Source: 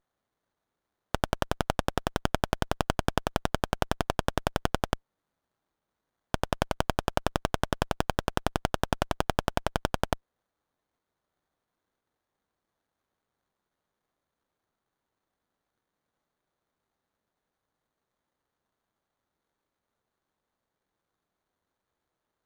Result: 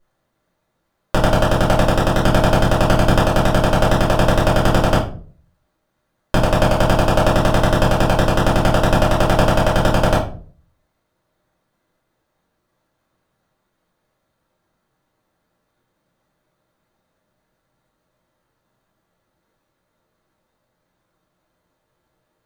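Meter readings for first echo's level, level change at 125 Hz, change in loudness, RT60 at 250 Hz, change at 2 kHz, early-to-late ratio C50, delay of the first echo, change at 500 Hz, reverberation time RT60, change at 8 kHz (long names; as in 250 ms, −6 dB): no echo audible, +17.0 dB, +14.5 dB, 0.60 s, +12.5 dB, 6.5 dB, no echo audible, +15.5 dB, 0.45 s, +10.5 dB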